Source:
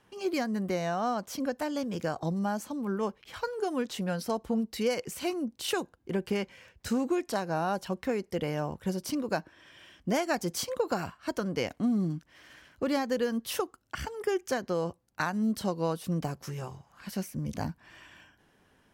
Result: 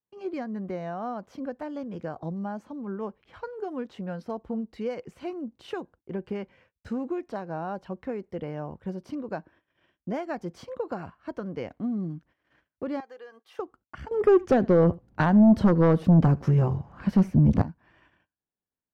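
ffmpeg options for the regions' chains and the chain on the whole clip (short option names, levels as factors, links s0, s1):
-filter_complex "[0:a]asettb=1/sr,asplit=3[s0][s1][s2];[s0]atrim=end=13.004[s3];[s1]atrim=start=13:end=13.59,asetpts=PTS-STARTPTS,afade=t=in:d=0.004:c=qsin,afade=t=out:st=0.586:d=0.004:c=qsin,highpass=750,aecho=1:1:2.5:0.53,atrim=end_sample=26019,acompressor=threshold=0.00398:ratio=1.5:attack=3.2:release=140:knee=1:detection=peak[s4];[s2]atrim=start=13.586[s5];[s3][s4]acrossfade=d=0.004:c1=hsin:c2=qsin[s6];[s6][s5]acrossfade=d=0.004:c1=qsin:c2=hsin,asettb=1/sr,asplit=3[s7][s8][s9];[s7]atrim=end=14.114[s10];[s8]atrim=start=14.11:end=17.62,asetpts=PTS-STARTPTS,afade=t=in:d=0.004:c=qsin,afade=t=out:st=3.506:d=0.004:c=qsin,lowshelf=f=470:g=10,aeval=exprs='0.299*sin(PI/2*2.24*val(0)/0.299)':c=same,aecho=1:1:77:0.0708,atrim=end_sample=154791[s11];[s9]atrim=start=17.616[s12];[s10][s11]acrossfade=d=0.004:c1=hsin:c2=qsin[s13];[s13][s12]acrossfade=d=0.004:c1=qsin:c2=hsin,agate=range=0.0355:threshold=0.00251:ratio=16:detection=peak,lowpass=f=1400:p=1,aemphasis=mode=reproduction:type=cd,volume=0.75"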